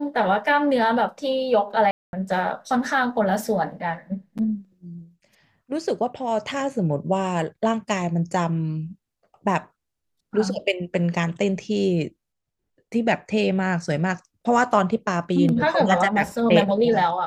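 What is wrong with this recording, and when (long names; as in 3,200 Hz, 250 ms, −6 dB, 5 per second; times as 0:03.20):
0:01.91–0:02.13: drop-out 221 ms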